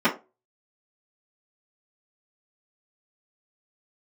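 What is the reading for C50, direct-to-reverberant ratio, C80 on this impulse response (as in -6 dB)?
12.5 dB, -11.5 dB, 19.5 dB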